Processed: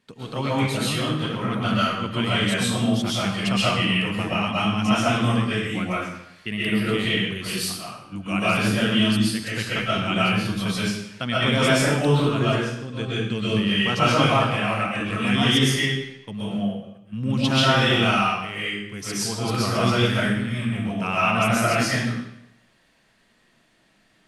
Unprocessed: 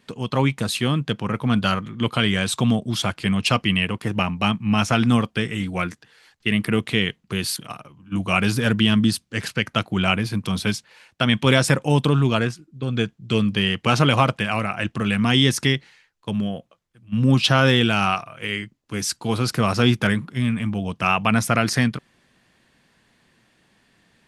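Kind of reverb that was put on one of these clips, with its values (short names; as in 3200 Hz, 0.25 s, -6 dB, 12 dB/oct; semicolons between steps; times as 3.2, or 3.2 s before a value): digital reverb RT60 0.79 s, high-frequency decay 0.95×, pre-delay 90 ms, DRR -8.5 dB; gain -9 dB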